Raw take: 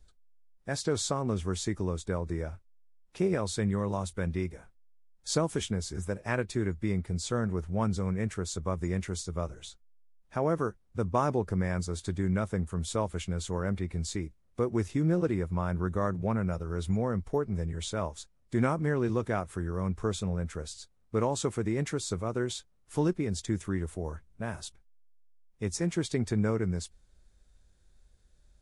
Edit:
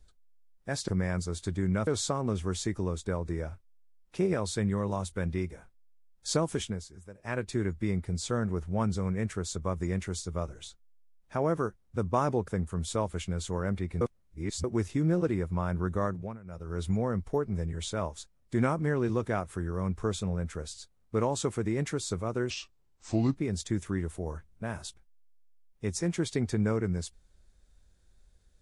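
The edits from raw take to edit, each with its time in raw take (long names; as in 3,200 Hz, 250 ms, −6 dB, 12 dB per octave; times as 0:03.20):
0:05.48–0:06.60: duck −14.5 dB, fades 0.44 s equal-power
0:11.49–0:12.48: move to 0:00.88
0:14.01–0:14.64: reverse
0:16.03–0:16.80: duck −19.5 dB, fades 0.36 s
0:22.50–0:23.15: play speed 75%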